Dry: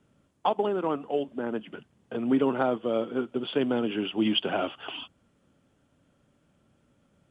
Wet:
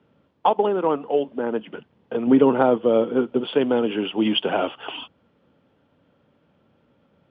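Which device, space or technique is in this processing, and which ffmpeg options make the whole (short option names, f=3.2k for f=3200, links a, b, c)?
guitar cabinet: -filter_complex "[0:a]highpass=78,equalizer=f=120:t=q:w=4:g=-3,equalizer=f=480:t=q:w=4:g=6,equalizer=f=900:t=q:w=4:g=5,lowpass=f=4.2k:w=0.5412,lowpass=f=4.2k:w=1.3066,asettb=1/sr,asplit=3[a][b][c];[a]atrim=end=2.274[d];[b]atrim=start=2.27:end=3.41,asetpts=PTS-STARTPTS,afade=t=in:d=0.004:c=qsin,afade=t=out:st=1.136:d=0.004:c=qsin,lowshelf=f=350:g=6[e];[c]atrim=start=3.406[f];[d][e]acrossfade=d=0.004:c1=hsin:c2=qsin[g];[g][f]acrossfade=d=0.004:c1=qsin:c2=hsin,volume=4dB"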